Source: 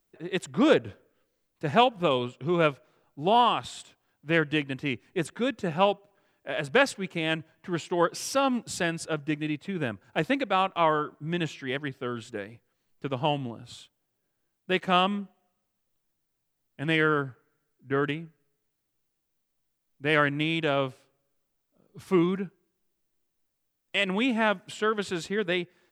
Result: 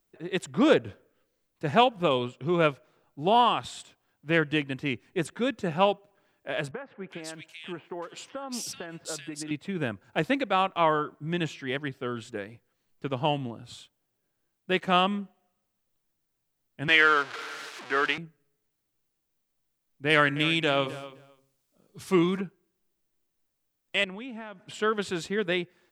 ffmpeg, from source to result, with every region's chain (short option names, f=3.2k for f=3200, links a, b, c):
-filter_complex "[0:a]asettb=1/sr,asplit=3[a][b][c];[a]atrim=end=6.714[d];[b]atrim=start=6.71:end=9.51,asetpts=PTS-STARTPTS,afade=t=in:d=0.004:c=qsin,afade=t=out:st=2.796:d=0.004:c=qsin,highpass=f=330:p=1,acompressor=threshold=-31dB:ratio=20:attack=3.2:release=140:knee=1:detection=peak,acrossover=split=2000[e][f];[f]adelay=380[g];[e][g]amix=inputs=2:normalize=0,atrim=end_sample=123480[h];[c]atrim=start=9.506[i];[d][h]acrossfade=d=0.004:c1=hsin:c2=qsin[j];[j][i]acrossfade=d=0.004:c1=qsin:c2=hsin,asettb=1/sr,asplit=3[k][l][m];[k]atrim=end=16.884[n];[l]atrim=start=16.88:end=18.18,asetpts=PTS-STARTPTS,afade=t=in:d=0.004:c=qsin,afade=t=out:st=1.296:d=0.004:c=qsin,aeval=exprs='val(0)+0.5*0.0224*sgn(val(0))':c=same,highpass=300,lowpass=4.3k,tiltshelf=f=660:g=-8.5[o];[m]atrim=start=18.176[p];[n][o]acrossfade=d=0.004:c1=hsin:c2=qsin[q];[q][p]acrossfade=d=0.004:c1=qsin:c2=hsin,asettb=1/sr,asplit=3[r][s][t];[r]atrim=end=20.104[u];[s]atrim=start=20.1:end=22.41,asetpts=PTS-STARTPTS,afade=t=in:d=0.004:c=qsin,afade=t=out:st=2.306:d=0.004:c=qsin,equalizer=f=7.4k:w=0.35:g=8,bandreject=f=134.8:t=h:w=4,bandreject=f=269.6:t=h:w=4,bandreject=f=404.4:t=h:w=4,bandreject=f=539.2:t=h:w=4,bandreject=f=674:t=h:w=4,bandreject=f=808.8:t=h:w=4,bandreject=f=943.6:t=h:w=4,bandreject=f=1.0784k:t=h:w=4,bandreject=f=1.2132k:t=h:w=4,bandreject=f=1.348k:t=h:w=4,bandreject=f=1.4828k:t=h:w=4,bandreject=f=1.6176k:t=h:w=4,bandreject=f=1.7524k:t=h:w=4,bandreject=f=1.8872k:t=h:w=4,bandreject=f=2.022k:t=h:w=4,bandreject=f=2.1568k:t=h:w=4,bandreject=f=2.2916k:t=h:w=4,bandreject=f=2.4264k:t=h:w=4,asplit=2[v][w];[w]adelay=260,lowpass=f=3.9k:p=1,volume=-15.5dB,asplit=2[x][y];[y]adelay=260,lowpass=f=3.9k:p=1,volume=0.15[z];[v][x][z]amix=inputs=3:normalize=0,atrim=end_sample=101871[aa];[t]atrim=start=22.406[ab];[u][aa]acrossfade=d=0.004:c1=hsin:c2=qsin[ac];[ac][ab]acrossfade=d=0.004:c1=qsin:c2=hsin,asettb=1/sr,asplit=3[ad][ae][af];[ad]atrim=end=24.044[ag];[ae]atrim=start=24.04:end=24.74,asetpts=PTS-STARTPTS,afade=t=in:d=0.004:c=qsin,afade=t=out:st=0.696:d=0.004:c=qsin,highshelf=f=5.4k:g=-10,acompressor=threshold=-37dB:ratio=6:attack=3.2:release=140:knee=1:detection=peak[ah];[af]atrim=start=24.736[ai];[ag][ah]acrossfade=d=0.004:c1=hsin:c2=qsin[aj];[aj][ai]acrossfade=d=0.004:c1=qsin:c2=hsin"